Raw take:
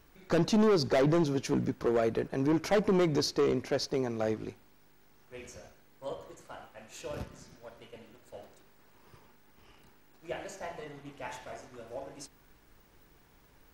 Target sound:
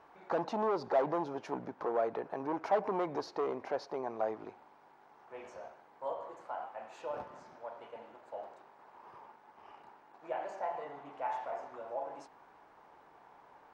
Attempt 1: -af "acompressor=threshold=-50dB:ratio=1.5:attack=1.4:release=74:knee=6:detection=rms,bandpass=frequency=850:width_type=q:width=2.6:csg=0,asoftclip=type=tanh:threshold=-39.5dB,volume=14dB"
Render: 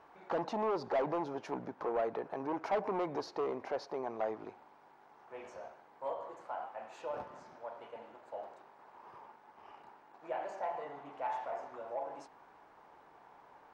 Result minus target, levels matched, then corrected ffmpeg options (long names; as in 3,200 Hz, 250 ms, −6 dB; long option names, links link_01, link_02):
soft clipping: distortion +17 dB
-af "acompressor=threshold=-50dB:ratio=1.5:attack=1.4:release=74:knee=6:detection=rms,bandpass=frequency=850:width_type=q:width=2.6:csg=0,asoftclip=type=tanh:threshold=-28.5dB,volume=14dB"